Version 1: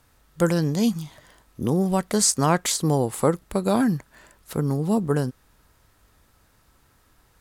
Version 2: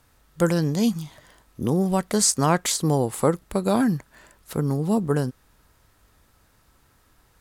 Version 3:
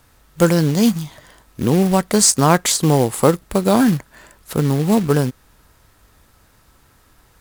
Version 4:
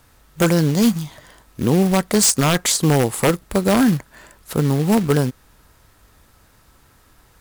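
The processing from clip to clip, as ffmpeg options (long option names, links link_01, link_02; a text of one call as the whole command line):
ffmpeg -i in.wav -af anull out.wav
ffmpeg -i in.wav -af "acrusher=bits=4:mode=log:mix=0:aa=0.000001,volume=6.5dB" out.wav
ffmpeg -i in.wav -af "acrusher=bits=6:mode=log:mix=0:aa=0.000001,aeval=exprs='0.376*(abs(mod(val(0)/0.376+3,4)-2)-1)':channel_layout=same" out.wav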